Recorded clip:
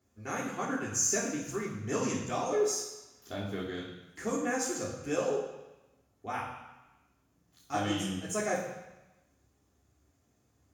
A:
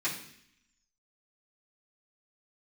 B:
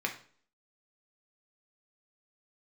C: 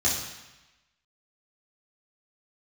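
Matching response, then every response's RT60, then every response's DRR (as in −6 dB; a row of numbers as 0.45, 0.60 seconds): C; 0.65, 0.50, 1.0 seconds; −12.0, 1.5, −7.0 decibels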